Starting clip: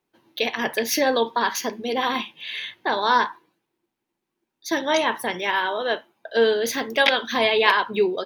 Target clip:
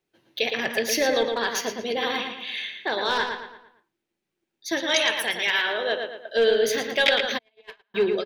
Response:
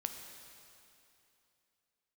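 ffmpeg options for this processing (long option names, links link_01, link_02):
-filter_complex "[0:a]acrossover=split=2500[link_01][link_02];[link_01]volume=13.5dB,asoftclip=hard,volume=-13.5dB[link_03];[link_03][link_02]amix=inputs=2:normalize=0,asettb=1/sr,asplit=3[link_04][link_05][link_06];[link_04]atrim=end=2.524[link_07];[link_05]atrim=start=2.52:end=3.07,asetpts=PTS-STARTPTS,afade=type=in:duration=0.004:curve=qsin,afade=type=out:start_time=0.546:duration=0.004:curve=qsin,highpass=140[link_08];[link_06]atrim=start=3.066[link_09];[link_07][link_08]acrossfade=duration=0.004:curve1=hsin:curve2=qsin[link_10];[link_10][link_09]acrossfade=duration=0.004:curve1=qsin:curve2=hsin,asettb=1/sr,asplit=3[link_11][link_12][link_13];[link_11]atrim=end=4.804[link_14];[link_12]atrim=start=4.8:end=5.66,asetpts=PTS-STARTPTS,afade=type=in:duration=0.004:curve=qsin,afade=type=out:start_time=0.856:duration=0.004:curve=qsin,tiltshelf=frequency=1100:gain=-6.5[link_15];[link_13]atrim=start=5.656[link_16];[link_14][link_15]acrossfade=duration=0.004:curve1=hsin:curve2=qsin[link_17];[link_17][link_16]acrossfade=duration=0.004:curve1=qsin:curve2=hsin,asplit=2[link_18][link_19];[link_19]adelay=113,lowpass=frequency=4300:poles=1,volume=-5dB,asplit=2[link_20][link_21];[link_21]adelay=113,lowpass=frequency=4300:poles=1,volume=0.43,asplit=2[link_22][link_23];[link_23]adelay=113,lowpass=frequency=4300:poles=1,volume=0.43,asplit=2[link_24][link_25];[link_25]adelay=113,lowpass=frequency=4300:poles=1,volume=0.43,asplit=2[link_26][link_27];[link_27]adelay=113,lowpass=frequency=4300:poles=1,volume=0.43[link_28];[link_20][link_22][link_24][link_26][link_28]amix=inputs=5:normalize=0[link_29];[link_18][link_29]amix=inputs=2:normalize=0,asplit=3[link_30][link_31][link_32];[link_30]afade=type=out:start_time=7.37:duration=0.02[link_33];[link_31]agate=range=-50dB:threshold=-12dB:ratio=16:detection=peak,afade=type=in:start_time=7.37:duration=0.02,afade=type=out:start_time=7.94:duration=0.02[link_34];[link_32]afade=type=in:start_time=7.94:duration=0.02[link_35];[link_33][link_34][link_35]amix=inputs=3:normalize=0,equalizer=frequency=250:width_type=o:width=0.67:gain=-6,equalizer=frequency=1000:width_type=o:width=0.67:gain=-10,equalizer=frequency=16000:width_type=o:width=0.67:gain=-7"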